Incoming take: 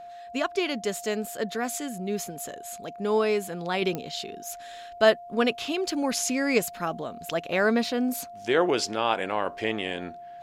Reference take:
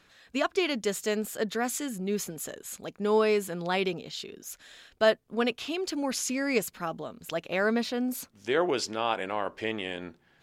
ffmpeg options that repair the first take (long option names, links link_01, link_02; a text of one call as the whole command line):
ffmpeg -i in.wav -af "adeclick=threshold=4,bandreject=frequency=700:width=30,asetnsamples=nb_out_samples=441:pad=0,asendcmd='3.82 volume volume -3.5dB',volume=0dB" out.wav